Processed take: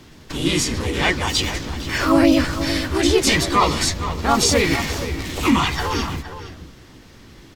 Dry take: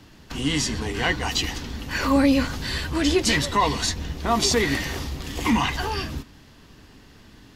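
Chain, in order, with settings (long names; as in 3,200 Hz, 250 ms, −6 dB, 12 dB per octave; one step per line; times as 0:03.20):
slap from a distant wall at 80 metres, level −11 dB
pitch-shifted copies added +3 semitones 0 dB
level +1 dB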